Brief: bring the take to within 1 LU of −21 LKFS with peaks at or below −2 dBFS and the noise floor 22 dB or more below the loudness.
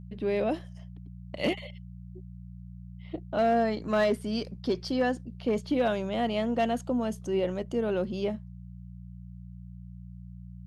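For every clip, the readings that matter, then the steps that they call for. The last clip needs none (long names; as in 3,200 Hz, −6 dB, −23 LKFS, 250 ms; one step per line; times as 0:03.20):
share of clipped samples 0.3%; peaks flattened at −19.0 dBFS; mains hum 60 Hz; hum harmonics up to 180 Hz; level of the hum −42 dBFS; integrated loudness −29.5 LKFS; sample peak −19.0 dBFS; target loudness −21.0 LKFS
→ clipped peaks rebuilt −19 dBFS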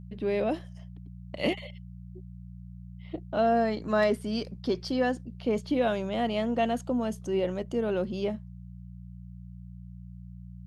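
share of clipped samples 0.0%; mains hum 60 Hz; hum harmonics up to 180 Hz; level of the hum −42 dBFS
→ hum removal 60 Hz, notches 3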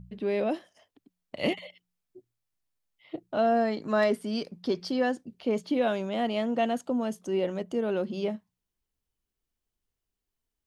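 mains hum none found; integrated loudness −29.0 LKFS; sample peak −13.5 dBFS; target loudness −21.0 LKFS
→ level +8 dB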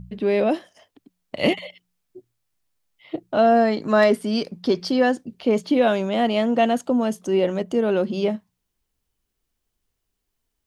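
integrated loudness −21.0 LKFS; sample peak −5.5 dBFS; background noise floor −78 dBFS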